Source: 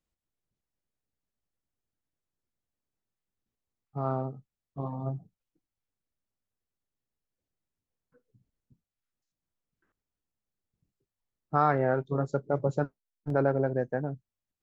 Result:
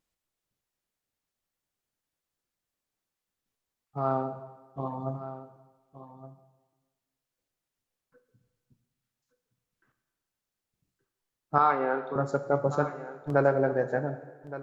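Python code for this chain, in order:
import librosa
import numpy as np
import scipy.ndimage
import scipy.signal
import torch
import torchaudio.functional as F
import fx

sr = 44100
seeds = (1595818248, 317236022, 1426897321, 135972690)

y = fx.low_shelf(x, sr, hz=370.0, db=-9.5)
y = fx.vibrato(y, sr, rate_hz=0.77, depth_cents=13.0)
y = fx.cabinet(y, sr, low_hz=220.0, low_slope=24, high_hz=4300.0, hz=(330.0, 640.0, 1800.0), db=(-8, -10, -9), at=(11.58, 12.16))
y = y + 10.0 ** (-14.0 / 20.0) * np.pad(y, (int(1169 * sr / 1000.0), 0))[:len(y)]
y = fx.rev_plate(y, sr, seeds[0], rt60_s=1.3, hf_ratio=0.95, predelay_ms=0, drr_db=9.0)
y = F.gain(torch.from_numpy(y), 5.5).numpy()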